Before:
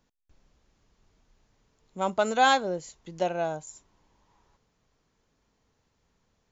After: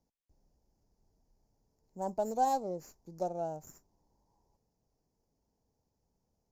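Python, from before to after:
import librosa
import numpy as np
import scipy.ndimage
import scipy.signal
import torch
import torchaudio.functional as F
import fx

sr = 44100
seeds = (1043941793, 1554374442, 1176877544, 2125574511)

y = scipy.signal.sosfilt(scipy.signal.ellip(3, 1.0, 40, [880.0, 5000.0], 'bandstop', fs=sr, output='sos'), x)
y = fx.running_max(y, sr, window=3)
y = y * 10.0 ** (-6.5 / 20.0)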